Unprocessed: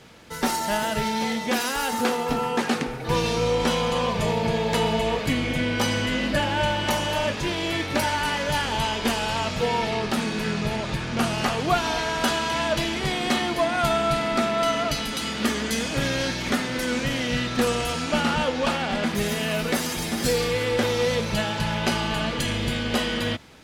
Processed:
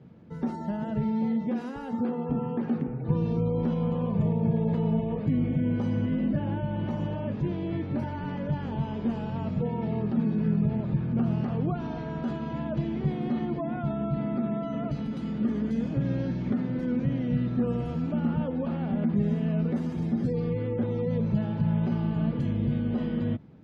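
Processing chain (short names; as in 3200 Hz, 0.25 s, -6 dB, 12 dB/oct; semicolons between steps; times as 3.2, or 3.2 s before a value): spectral gate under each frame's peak -25 dB strong; limiter -16 dBFS, peak gain reduction 5.5 dB; band-pass 160 Hz, Q 1.5; gain +5.5 dB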